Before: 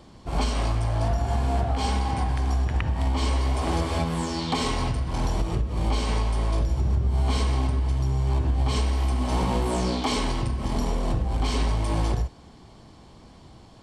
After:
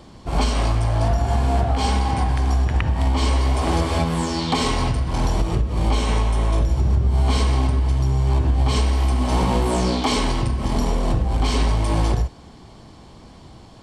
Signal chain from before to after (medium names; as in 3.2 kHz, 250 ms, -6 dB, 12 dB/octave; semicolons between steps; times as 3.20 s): 5.93–6.71 s: band-stop 4.7 kHz, Q 7.1; trim +5 dB